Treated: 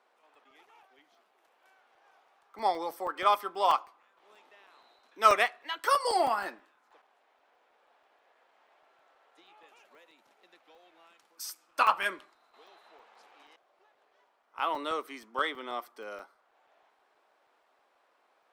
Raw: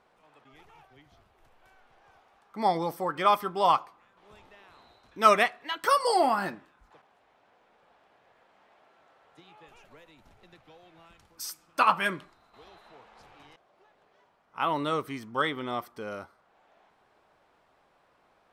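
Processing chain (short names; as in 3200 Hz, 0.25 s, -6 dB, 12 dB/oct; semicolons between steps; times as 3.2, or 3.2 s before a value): added harmonics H 7 -35 dB, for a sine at -8 dBFS; Bessel high-pass 420 Hz, order 8; crackling interface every 0.16 s, samples 128, zero, from 0.35; gain -1.5 dB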